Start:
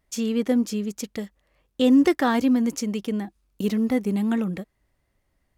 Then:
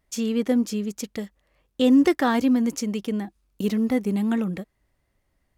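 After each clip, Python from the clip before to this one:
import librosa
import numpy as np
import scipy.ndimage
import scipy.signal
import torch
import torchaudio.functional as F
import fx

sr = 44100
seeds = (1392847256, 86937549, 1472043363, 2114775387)

y = x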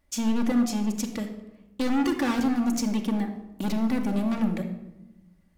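y = np.clip(x, -10.0 ** (-26.0 / 20.0), 10.0 ** (-26.0 / 20.0))
y = fx.room_shoebox(y, sr, seeds[0], volume_m3=3900.0, walls='furnished', distance_m=2.4)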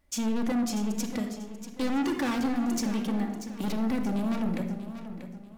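y = 10.0 ** (-23.0 / 20.0) * np.tanh(x / 10.0 ** (-23.0 / 20.0))
y = fx.echo_feedback(y, sr, ms=638, feedback_pct=33, wet_db=-11.0)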